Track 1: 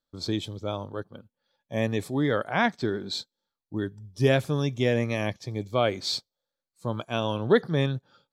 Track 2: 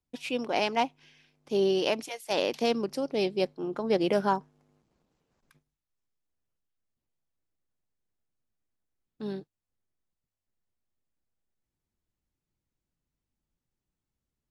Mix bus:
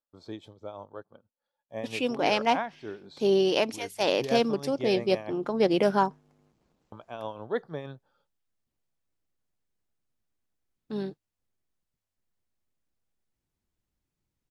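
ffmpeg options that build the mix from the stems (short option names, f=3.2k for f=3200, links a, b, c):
-filter_complex "[0:a]equalizer=f=780:t=o:w=2.4:g=12.5,tremolo=f=6.2:d=0.59,volume=-15.5dB,asplit=3[a][b][c];[a]atrim=end=5.37,asetpts=PTS-STARTPTS,afade=t=out:st=5.366:d=0.004:c=hsin[d];[b]atrim=start=5.37:end=6.92,asetpts=PTS-STARTPTS,volume=0[e];[c]atrim=start=6.92,asetpts=PTS-STARTPTS,afade=t=in:d=0.004:c=hsin[f];[d][e][f]concat=n=3:v=0:a=1[g];[1:a]adelay=1700,volume=2.5dB[h];[g][h]amix=inputs=2:normalize=0,highshelf=f=10k:g=-3"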